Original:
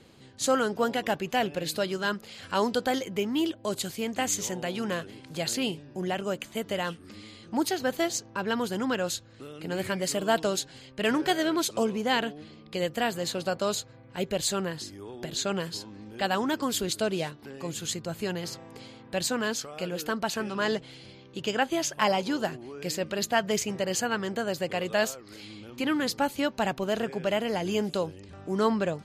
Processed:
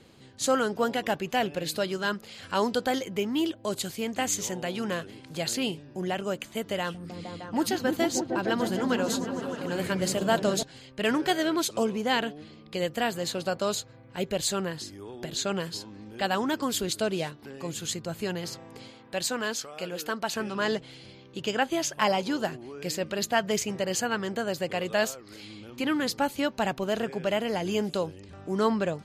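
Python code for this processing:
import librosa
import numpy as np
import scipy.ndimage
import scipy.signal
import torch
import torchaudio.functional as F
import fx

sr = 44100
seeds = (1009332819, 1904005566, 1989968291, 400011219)

y = fx.echo_opening(x, sr, ms=153, hz=200, octaves=1, feedback_pct=70, wet_db=0, at=(6.79, 10.63))
y = fx.low_shelf(y, sr, hz=260.0, db=-7.5, at=(18.9, 20.3))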